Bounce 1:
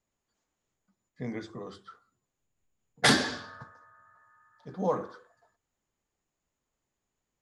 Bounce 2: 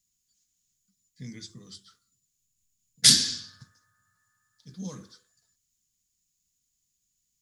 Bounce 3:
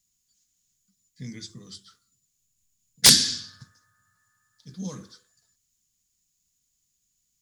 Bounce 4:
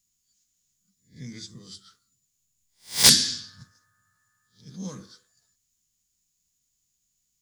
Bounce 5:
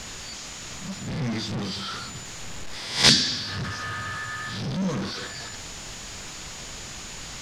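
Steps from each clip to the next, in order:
EQ curve 180 Hz 0 dB, 750 Hz -25 dB, 5300 Hz +14 dB; gain -1 dB
wrapped overs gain 5 dB; gain +3 dB
spectral swells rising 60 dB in 0.30 s; gain -2 dB
zero-crossing step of -27 dBFS; LPF 4100 Hz 12 dB/oct; gain +3 dB

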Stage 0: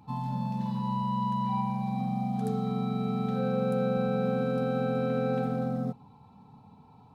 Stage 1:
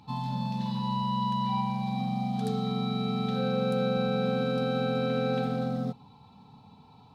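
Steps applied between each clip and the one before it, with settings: bell 3900 Hz +12 dB 1.3 oct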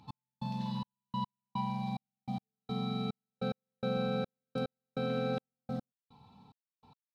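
step gate "x...xxxx..." 145 bpm -60 dB; gain -5 dB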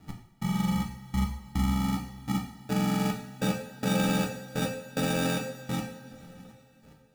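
sample-and-hold 42×; two-slope reverb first 0.55 s, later 3.6 s, from -18 dB, DRR 1.5 dB; gain +5.5 dB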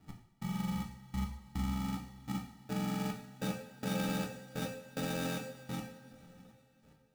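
sample-rate reducer 15000 Hz, jitter 0%; gain -8.5 dB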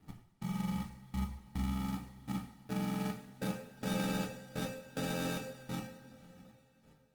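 Opus 24 kbps 48000 Hz

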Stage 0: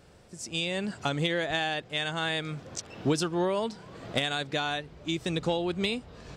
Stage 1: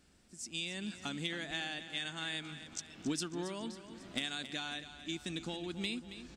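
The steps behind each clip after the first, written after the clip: ten-band EQ 125 Hz -11 dB, 250 Hz +7 dB, 500 Hz -12 dB, 1000 Hz -5 dB, 8000 Hz +4 dB; on a send: feedback echo 0.274 s, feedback 52%, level -12 dB; on the sum: gain -7.5 dB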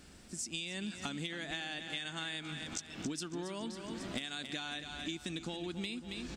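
compressor 6:1, threshold -48 dBFS, peak gain reduction 15.5 dB; gain +10.5 dB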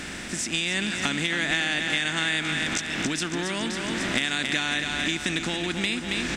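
per-bin compression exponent 0.6; bell 2000 Hz +8.5 dB 1 oct; gain +7.5 dB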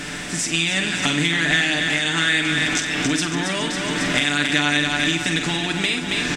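comb 6.8 ms, depth 68%; on a send: flutter echo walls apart 8.2 m, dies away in 0.36 s; on the sum: gain +3.5 dB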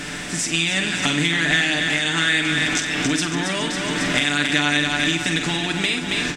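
ending taper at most 230 dB/s

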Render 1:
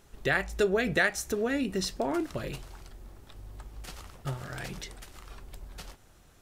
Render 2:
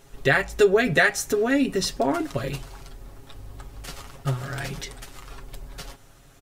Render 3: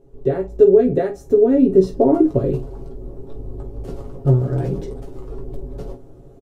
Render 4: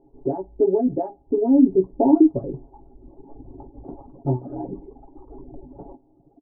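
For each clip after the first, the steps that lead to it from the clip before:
comb 7.3 ms; gain +5 dB
EQ curve 210 Hz 0 dB, 400 Hz +7 dB, 1800 Hz -25 dB; AGC gain up to 9 dB; on a send: early reflections 16 ms -4.5 dB, 48 ms -11.5 dB
reverb removal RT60 1.5 s; vocal tract filter u; band shelf 1000 Hz +14 dB; gain +4 dB

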